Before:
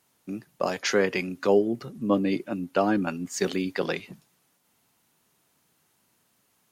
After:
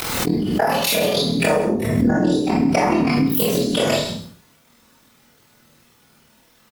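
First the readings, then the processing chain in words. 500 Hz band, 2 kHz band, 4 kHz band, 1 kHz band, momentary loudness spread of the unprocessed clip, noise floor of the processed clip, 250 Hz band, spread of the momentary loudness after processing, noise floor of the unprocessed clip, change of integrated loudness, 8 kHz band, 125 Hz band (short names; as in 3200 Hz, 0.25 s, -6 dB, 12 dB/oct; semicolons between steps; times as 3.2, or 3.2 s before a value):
+5.5 dB, +6.5 dB, +13.5 dB, +9.5 dB, 9 LU, -56 dBFS, +9.0 dB, 3 LU, -69 dBFS, +8.0 dB, +10.5 dB, +12.5 dB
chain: inharmonic rescaling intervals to 127%; bell 3800 Hz +2.5 dB 0.42 oct; compressor 10:1, threshold -34 dBFS, peak gain reduction 17.5 dB; AM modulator 40 Hz, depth 85%; on a send: echo 0.131 s -12 dB; on the sum: Schroeder reverb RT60 0.37 s, combs from 26 ms, DRR -3.5 dB; maximiser +26.5 dB; backwards sustainer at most 32 dB/s; gain -7.5 dB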